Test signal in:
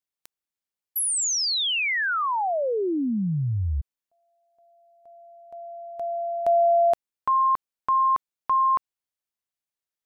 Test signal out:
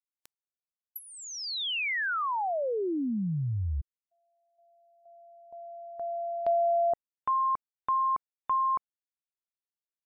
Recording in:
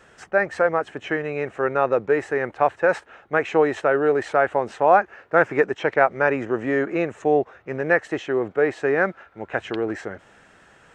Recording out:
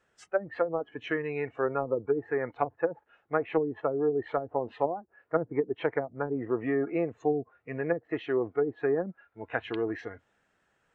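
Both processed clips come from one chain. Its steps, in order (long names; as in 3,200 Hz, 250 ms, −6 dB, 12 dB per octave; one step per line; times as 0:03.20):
treble cut that deepens with the level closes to 310 Hz, closed at −14 dBFS
noise reduction from a noise print of the clip's start 15 dB
level −5 dB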